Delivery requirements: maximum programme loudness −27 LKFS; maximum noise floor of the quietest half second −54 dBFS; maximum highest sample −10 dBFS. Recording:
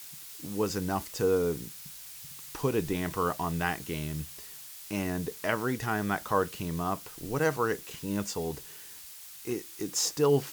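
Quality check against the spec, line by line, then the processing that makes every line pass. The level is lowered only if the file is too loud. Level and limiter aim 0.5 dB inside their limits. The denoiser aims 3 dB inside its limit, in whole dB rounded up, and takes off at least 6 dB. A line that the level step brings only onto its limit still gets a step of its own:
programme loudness −31.5 LKFS: in spec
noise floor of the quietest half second −47 dBFS: out of spec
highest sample −12.0 dBFS: in spec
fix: broadband denoise 10 dB, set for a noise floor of −47 dBFS

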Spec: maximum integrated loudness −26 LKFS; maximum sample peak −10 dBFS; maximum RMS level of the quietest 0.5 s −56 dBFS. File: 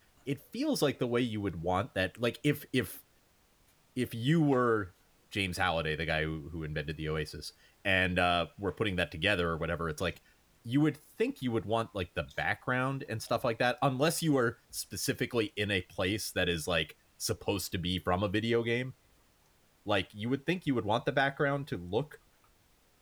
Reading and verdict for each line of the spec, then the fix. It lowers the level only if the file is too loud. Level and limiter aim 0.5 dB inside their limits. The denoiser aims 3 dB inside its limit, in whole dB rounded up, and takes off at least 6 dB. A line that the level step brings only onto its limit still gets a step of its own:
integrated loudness −32.0 LKFS: in spec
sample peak −13.0 dBFS: in spec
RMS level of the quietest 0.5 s −67 dBFS: in spec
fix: no processing needed

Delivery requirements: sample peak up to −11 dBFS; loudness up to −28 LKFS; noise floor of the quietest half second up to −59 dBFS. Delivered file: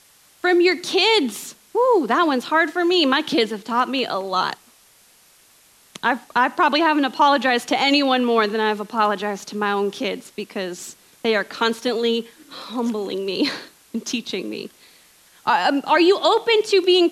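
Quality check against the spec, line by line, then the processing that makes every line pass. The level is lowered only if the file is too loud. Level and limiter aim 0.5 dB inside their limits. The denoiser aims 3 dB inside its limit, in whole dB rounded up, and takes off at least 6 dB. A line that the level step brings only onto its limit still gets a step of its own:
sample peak −6.0 dBFS: out of spec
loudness −19.5 LKFS: out of spec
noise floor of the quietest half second −54 dBFS: out of spec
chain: level −9 dB

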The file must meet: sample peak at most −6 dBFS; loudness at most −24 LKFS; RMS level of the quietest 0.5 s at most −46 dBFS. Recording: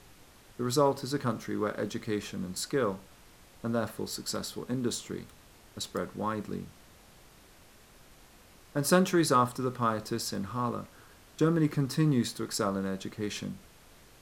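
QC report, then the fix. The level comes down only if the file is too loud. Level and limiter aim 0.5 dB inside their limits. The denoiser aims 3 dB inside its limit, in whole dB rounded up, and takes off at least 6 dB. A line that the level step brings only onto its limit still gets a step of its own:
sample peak −10.0 dBFS: in spec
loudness −31.0 LKFS: in spec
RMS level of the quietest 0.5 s −56 dBFS: in spec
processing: no processing needed

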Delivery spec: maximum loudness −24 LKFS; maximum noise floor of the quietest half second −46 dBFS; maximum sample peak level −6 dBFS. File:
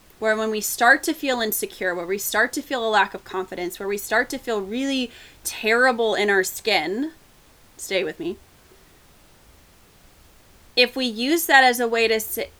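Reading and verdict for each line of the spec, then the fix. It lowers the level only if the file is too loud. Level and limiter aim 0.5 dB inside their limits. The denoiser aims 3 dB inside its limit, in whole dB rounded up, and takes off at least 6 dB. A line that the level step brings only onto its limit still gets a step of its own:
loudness −21.5 LKFS: out of spec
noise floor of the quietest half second −53 dBFS: in spec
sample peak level −1.5 dBFS: out of spec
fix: level −3 dB
brickwall limiter −6.5 dBFS

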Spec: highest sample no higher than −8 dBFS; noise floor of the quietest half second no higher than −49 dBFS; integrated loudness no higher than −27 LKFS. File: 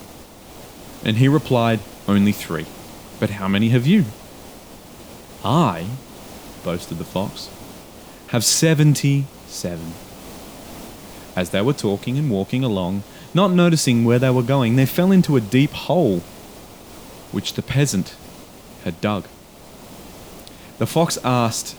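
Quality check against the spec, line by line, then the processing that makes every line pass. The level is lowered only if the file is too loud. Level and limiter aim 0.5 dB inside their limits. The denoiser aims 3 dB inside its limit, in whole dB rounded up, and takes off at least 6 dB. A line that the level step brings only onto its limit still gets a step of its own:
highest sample −4.0 dBFS: out of spec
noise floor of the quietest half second −43 dBFS: out of spec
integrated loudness −19.5 LKFS: out of spec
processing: level −8 dB

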